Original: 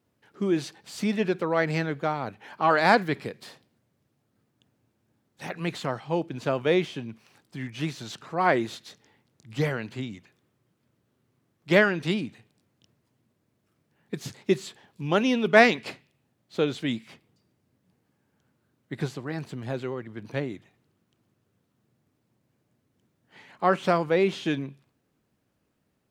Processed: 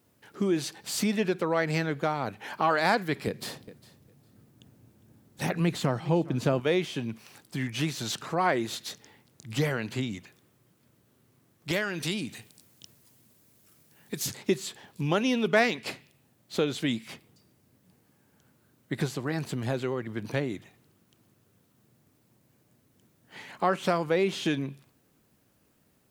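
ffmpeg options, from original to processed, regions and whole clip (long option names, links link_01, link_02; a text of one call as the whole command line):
ffmpeg -i in.wav -filter_complex "[0:a]asettb=1/sr,asplit=3[link_01][link_02][link_03];[link_01]atrim=end=3.274[link_04];[link_02]atrim=start=3.27:end=6.6,asetpts=PTS-STARTPTS,afade=type=in:duration=0.004:curve=qsin,afade=type=out:start_time=3.326:duration=0.004:curve=qsin,lowshelf=frequency=420:gain=9.5,aecho=1:1:405|810:0.0891|0.0143,atrim=end_sample=146853[link_05];[link_03]atrim=start=6.596[link_06];[link_04][link_05]acrossfade=duration=0.004:curve1=hsin:curve2=qsin[link_07];[link_07][link_06]acrossfade=duration=0.004:curve1=qsin:curve2=hsin,asettb=1/sr,asplit=3[link_08][link_09][link_10];[link_08]atrim=end=11.714[link_11];[link_09]atrim=start=11.71:end=14.28,asetpts=PTS-STARTPTS,afade=type=in:duration=0.004:curve=qsin,afade=type=out:start_time=2.566:duration=0.004:curve=qsin,highshelf=frequency=3300:gain=10,acompressor=threshold=-45dB:ratio=1.5:attack=3.2:release=140:knee=1:detection=peak[link_12];[link_10]atrim=start=14.276[link_13];[link_11][link_12]acrossfade=duration=0.004:curve1=hsin:curve2=qsin[link_14];[link_14][link_13]acrossfade=duration=0.004:curve1=qsin:curve2=hsin,highshelf=frequency=7200:gain=10.5,acompressor=threshold=-34dB:ratio=2,volume=5.5dB" out.wav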